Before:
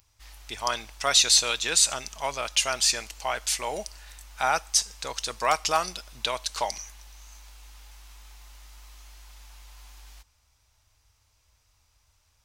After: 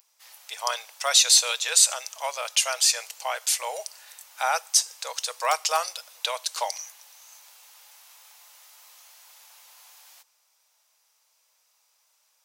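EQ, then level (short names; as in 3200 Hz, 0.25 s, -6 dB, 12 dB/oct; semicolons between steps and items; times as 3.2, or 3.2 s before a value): Chebyshev high-pass 490 Hz, order 5; high shelf 10000 Hz +10.5 dB; 0.0 dB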